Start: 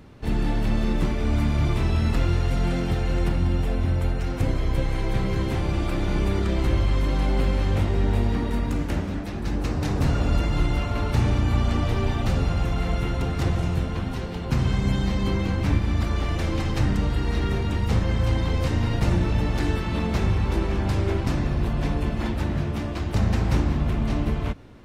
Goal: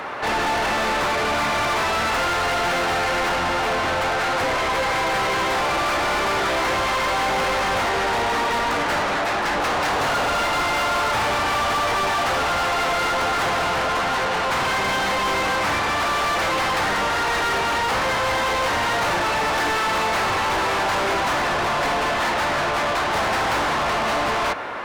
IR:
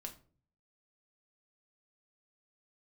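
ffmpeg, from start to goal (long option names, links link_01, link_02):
-filter_complex "[0:a]acrossover=split=570 2000:gain=0.112 1 0.2[link_01][link_02][link_03];[link_01][link_02][link_03]amix=inputs=3:normalize=0,asplit=2[link_04][link_05];[link_05]highpass=frequency=720:poles=1,volume=35dB,asoftclip=type=tanh:threshold=-19dB[link_06];[link_04][link_06]amix=inputs=2:normalize=0,lowpass=frequency=5700:poles=1,volume=-6dB,volume=4dB"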